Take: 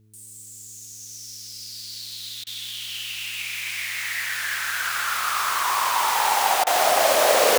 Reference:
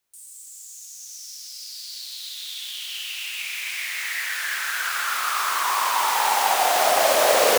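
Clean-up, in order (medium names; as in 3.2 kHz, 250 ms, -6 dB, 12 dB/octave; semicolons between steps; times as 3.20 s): de-hum 107.5 Hz, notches 4; interpolate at 2.44/6.64 s, 26 ms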